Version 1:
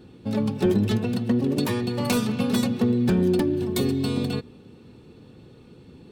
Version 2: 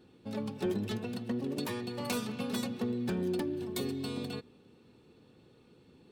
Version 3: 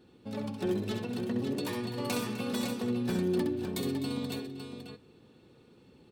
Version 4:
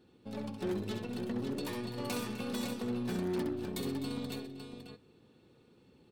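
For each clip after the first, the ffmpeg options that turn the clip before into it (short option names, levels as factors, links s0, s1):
-af "lowshelf=f=220:g=-8.5,volume=0.376"
-af "aecho=1:1:66|254|557:0.501|0.188|0.473"
-af "aeval=exprs='0.1*(cos(1*acos(clip(val(0)/0.1,-1,1)))-cos(1*PI/2))+0.0126*(cos(5*acos(clip(val(0)/0.1,-1,1)))-cos(5*PI/2))+0.01*(cos(6*acos(clip(val(0)/0.1,-1,1)))-cos(6*PI/2))+0.00708*(cos(7*acos(clip(val(0)/0.1,-1,1)))-cos(7*PI/2))+0.0112*(cos(8*acos(clip(val(0)/0.1,-1,1)))-cos(8*PI/2))':c=same,volume=0.531"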